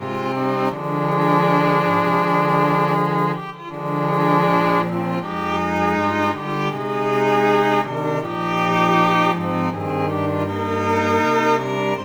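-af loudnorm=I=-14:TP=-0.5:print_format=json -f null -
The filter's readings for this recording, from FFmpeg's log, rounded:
"input_i" : "-19.2",
"input_tp" : "-5.1",
"input_lra" : "1.4",
"input_thresh" : "-29.3",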